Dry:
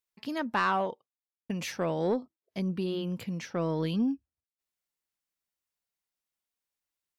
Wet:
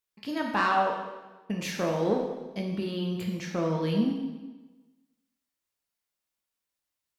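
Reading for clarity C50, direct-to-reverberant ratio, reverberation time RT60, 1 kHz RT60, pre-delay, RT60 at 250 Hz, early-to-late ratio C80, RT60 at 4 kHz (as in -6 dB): 4.0 dB, 0.0 dB, 1.2 s, 1.2 s, 5 ms, 1.2 s, 6.0 dB, 1.1 s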